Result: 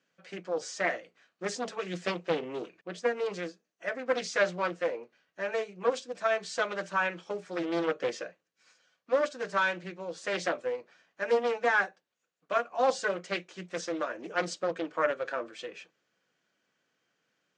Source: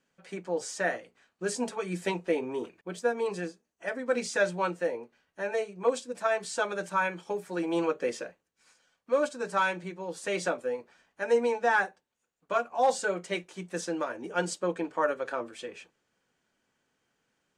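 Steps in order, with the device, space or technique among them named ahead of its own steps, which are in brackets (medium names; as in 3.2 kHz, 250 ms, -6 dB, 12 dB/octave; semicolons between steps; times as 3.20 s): full-range speaker at full volume (loudspeaker Doppler distortion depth 0.51 ms; cabinet simulation 170–6600 Hz, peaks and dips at 240 Hz -6 dB, 400 Hz -4 dB, 880 Hz -7 dB); trim +1 dB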